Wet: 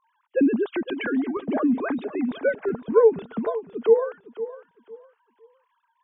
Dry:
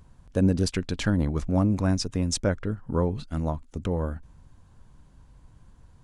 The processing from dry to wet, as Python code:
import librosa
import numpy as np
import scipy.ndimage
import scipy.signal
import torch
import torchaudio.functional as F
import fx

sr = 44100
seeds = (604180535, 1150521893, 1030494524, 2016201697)

y = fx.sine_speech(x, sr)
y = fx.peak_eq(y, sr, hz=450.0, db=fx.steps((0.0, -2.5), (1.37, 5.5), (2.69, 11.5)), octaves=0.21)
y = fx.echo_feedback(y, sr, ms=508, feedback_pct=26, wet_db=-14.0)